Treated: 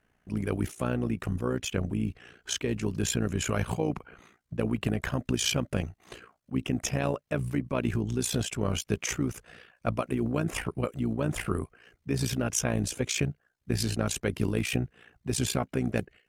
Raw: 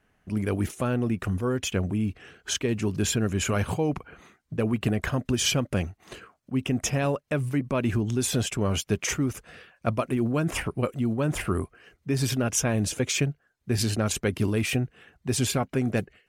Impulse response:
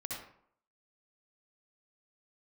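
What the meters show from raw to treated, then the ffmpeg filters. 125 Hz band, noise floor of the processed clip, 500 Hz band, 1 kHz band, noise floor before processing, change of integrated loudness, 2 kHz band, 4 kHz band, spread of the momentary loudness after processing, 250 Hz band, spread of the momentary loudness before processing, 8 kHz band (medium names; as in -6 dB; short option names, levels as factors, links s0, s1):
-3.5 dB, -75 dBFS, -3.5 dB, -3.5 dB, -71 dBFS, -3.5 dB, -3.5 dB, -3.5 dB, 7 LU, -3.5 dB, 7 LU, -3.5 dB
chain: -af "tremolo=f=59:d=0.75"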